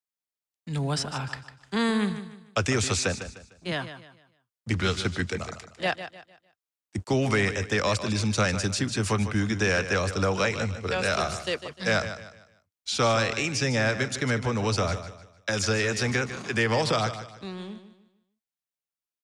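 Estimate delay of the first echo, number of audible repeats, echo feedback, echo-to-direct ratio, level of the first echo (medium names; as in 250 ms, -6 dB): 151 ms, 3, 34%, -11.0 dB, -11.5 dB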